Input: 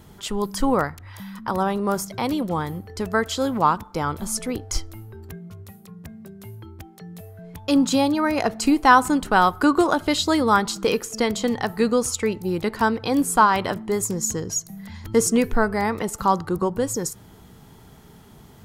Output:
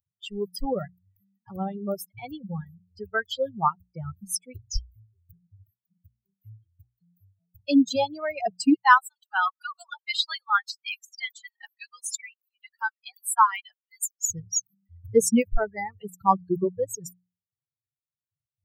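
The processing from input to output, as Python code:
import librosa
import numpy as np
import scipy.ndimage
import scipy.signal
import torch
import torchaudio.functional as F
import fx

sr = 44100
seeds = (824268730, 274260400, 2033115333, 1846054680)

y = fx.cheby2_highpass(x, sr, hz=260.0, order=4, stop_db=60, at=(8.74, 14.29))
y = fx.bin_expand(y, sr, power=3.0)
y = fx.dereverb_blind(y, sr, rt60_s=1.5)
y = fx.hum_notches(y, sr, base_hz=60, count=3)
y = F.gain(torch.from_numpy(y), 3.0).numpy()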